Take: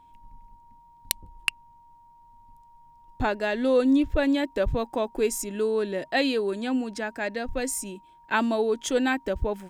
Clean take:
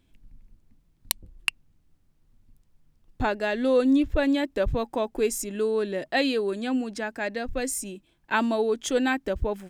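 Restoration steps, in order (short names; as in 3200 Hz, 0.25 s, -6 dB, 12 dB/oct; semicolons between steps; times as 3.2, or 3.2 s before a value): notch 940 Hz, Q 30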